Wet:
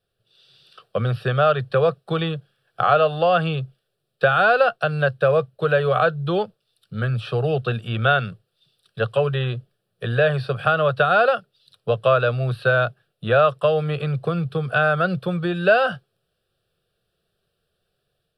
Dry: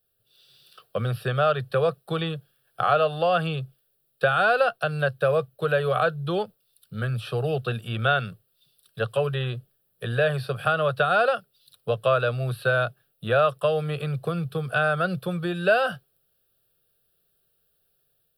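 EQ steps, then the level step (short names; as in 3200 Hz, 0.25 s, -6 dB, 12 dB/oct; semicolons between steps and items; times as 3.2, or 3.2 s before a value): air absorption 81 m; +4.5 dB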